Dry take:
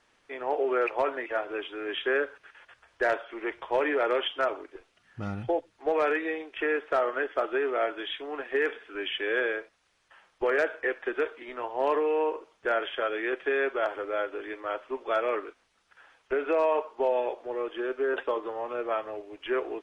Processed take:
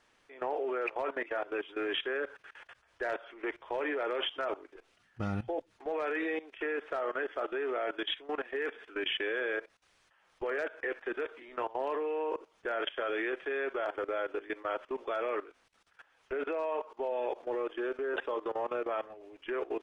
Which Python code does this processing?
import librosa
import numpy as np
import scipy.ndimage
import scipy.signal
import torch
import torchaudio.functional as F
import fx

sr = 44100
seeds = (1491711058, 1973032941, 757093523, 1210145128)

y = fx.level_steps(x, sr, step_db=18)
y = F.gain(torch.from_numpy(y), 3.0).numpy()